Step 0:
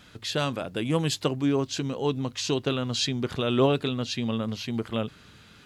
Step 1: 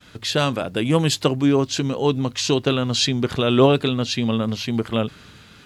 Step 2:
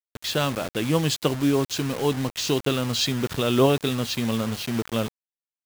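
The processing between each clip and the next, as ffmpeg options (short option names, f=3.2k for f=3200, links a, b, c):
-af "agate=range=-33dB:threshold=-50dB:ratio=3:detection=peak,volume=7dB"
-af "acrusher=bits=4:mix=0:aa=0.000001,volume=-4dB"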